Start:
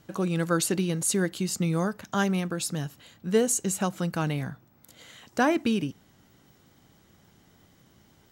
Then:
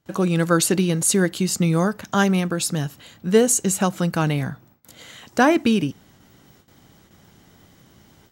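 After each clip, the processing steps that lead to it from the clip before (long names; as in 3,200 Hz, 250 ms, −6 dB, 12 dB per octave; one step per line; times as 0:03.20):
noise gate with hold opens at −49 dBFS
level +7 dB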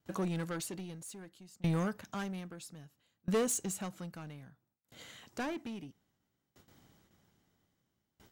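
soft clipping −17.5 dBFS, distortion −11 dB
tremolo with a ramp in dB decaying 0.61 Hz, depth 27 dB
level −7 dB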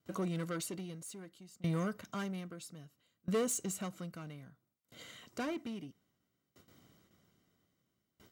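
in parallel at −3 dB: brickwall limiter −34 dBFS, peak gain reduction 9 dB
on the sum: notch comb filter 850 Hz
level −4 dB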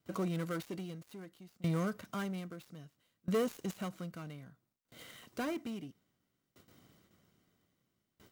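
gap after every zero crossing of 0.074 ms
level +1 dB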